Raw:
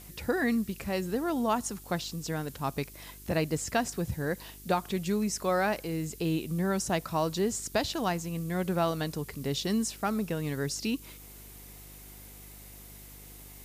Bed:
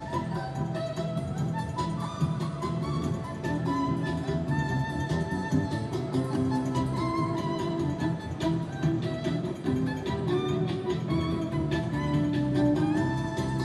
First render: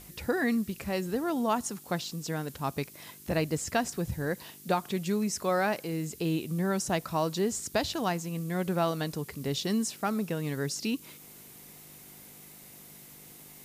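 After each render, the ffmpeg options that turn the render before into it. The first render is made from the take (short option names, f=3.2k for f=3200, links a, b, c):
-af "bandreject=f=50:t=h:w=4,bandreject=f=100:t=h:w=4"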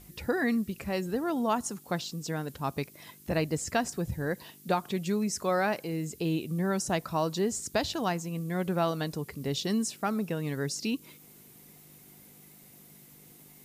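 -af "afftdn=nr=6:nf=-51"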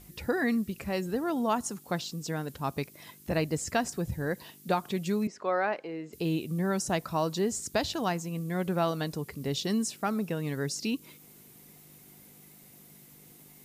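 -filter_complex "[0:a]asettb=1/sr,asplit=3[a][b][c];[a]atrim=end=5.274[d];[b]atrim=start=5.27:end=6.13,asetpts=PTS-STARTPTS,afade=t=in:d=0.004:c=qsin,afade=t=out:st=0.856:d=0.004:c=qsin,highpass=340,lowpass=2.5k[e];[c]atrim=start=6.126[f];[d][e]acrossfade=d=0.004:c1=hsin:c2=qsin[g];[g][f]acrossfade=d=0.004:c1=qsin:c2=hsin"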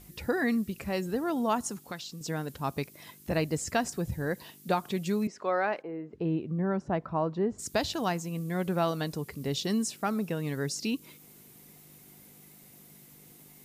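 -filter_complex "[0:a]asettb=1/sr,asplit=3[a][b][c];[a]atrim=end=1.774[d];[b]atrim=start=1.77:end=2.21,asetpts=PTS-STARTPTS,afade=t=in:d=0.004:c=qsin,afade=t=out:st=0.436:d=0.004:c=qsin,acrossover=split=1200|7700[e][f][g];[e]acompressor=threshold=-41dB:ratio=4[h];[f]acompressor=threshold=-39dB:ratio=4[i];[g]acompressor=threshold=-56dB:ratio=4[j];[h][i][j]amix=inputs=3:normalize=0[k];[c]atrim=start=2.206[l];[d][k]acrossfade=d=0.004:c1=hsin:c2=qsin[m];[m][l]acrossfade=d=0.004:c1=qsin:c2=hsin,asplit=3[n][o][p];[n]afade=t=out:st=5.81:d=0.02[q];[o]lowpass=1.4k,afade=t=in:st=5.81:d=0.02,afade=t=out:st=7.58:d=0.02[r];[p]afade=t=in:st=7.58:d=0.02[s];[q][r][s]amix=inputs=3:normalize=0"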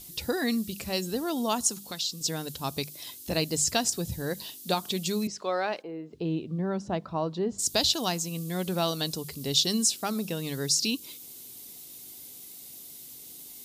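-af "highshelf=f=2.7k:t=q:w=1.5:g=10,bandreject=f=50:t=h:w=6,bandreject=f=100:t=h:w=6,bandreject=f=150:t=h:w=6,bandreject=f=200:t=h:w=6"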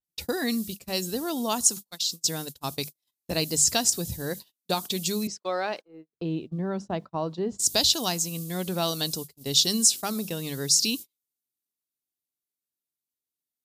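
-af "agate=range=-46dB:threshold=-35dB:ratio=16:detection=peak,adynamicequalizer=threshold=0.0126:dfrequency=4100:dqfactor=0.7:tfrequency=4100:tqfactor=0.7:attack=5:release=100:ratio=0.375:range=3:mode=boostabove:tftype=highshelf"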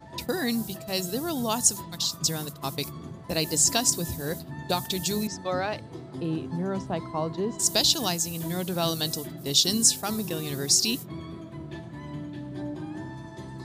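-filter_complex "[1:a]volume=-10.5dB[a];[0:a][a]amix=inputs=2:normalize=0"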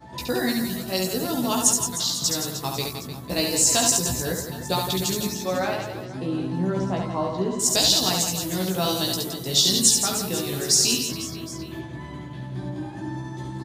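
-filter_complex "[0:a]asplit=2[a][b];[b]adelay=16,volume=-3dB[c];[a][c]amix=inputs=2:normalize=0,aecho=1:1:70|168|305.2|497.3|766.2:0.631|0.398|0.251|0.158|0.1"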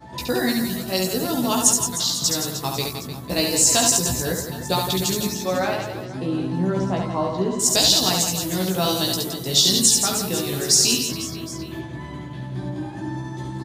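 -af "volume=2.5dB,alimiter=limit=-3dB:level=0:latency=1"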